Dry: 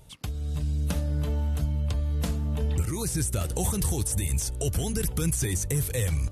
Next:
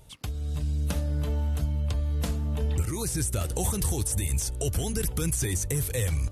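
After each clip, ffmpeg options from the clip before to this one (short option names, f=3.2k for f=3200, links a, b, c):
-af "equalizer=f=170:t=o:w=0.73:g=-3"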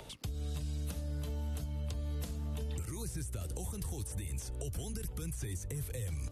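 -filter_complex "[0:a]acrossover=split=240|5000[a][b][c];[b]acompressor=mode=upward:threshold=-40dB:ratio=2.5[d];[a][d][c]amix=inputs=3:normalize=0,alimiter=limit=-21.5dB:level=0:latency=1:release=390,acrossover=split=140|550|3200[e][f][g][h];[e]acompressor=threshold=-37dB:ratio=4[i];[f]acompressor=threshold=-45dB:ratio=4[j];[g]acompressor=threshold=-55dB:ratio=4[k];[h]acompressor=threshold=-46dB:ratio=4[l];[i][j][k][l]amix=inputs=4:normalize=0,volume=-1dB"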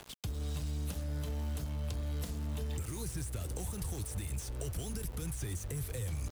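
-af "aeval=exprs='val(0)*gte(abs(val(0)),0.00531)':c=same,volume=1dB"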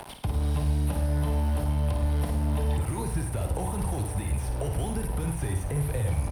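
-filter_complex "[0:a]acrossover=split=2800[a][b];[b]acompressor=threshold=-58dB:ratio=4:attack=1:release=60[c];[a][c]amix=inputs=2:normalize=0,superequalizer=8b=1.78:9b=2.51:15b=0.501:16b=2.82,aecho=1:1:55|103:0.473|0.282,volume=9dB"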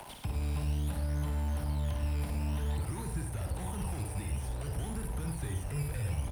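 -filter_complex "[0:a]aeval=exprs='val(0)+0.5*0.00708*sgn(val(0))':c=same,acrossover=split=330|810[a][b][c];[a]acrusher=samples=12:mix=1:aa=0.000001:lfo=1:lforange=12:lforate=0.55[d];[b]aeval=exprs='0.0106*(abs(mod(val(0)/0.0106+3,4)-2)-1)':c=same[e];[d][e][c]amix=inputs=3:normalize=0,volume=-7dB"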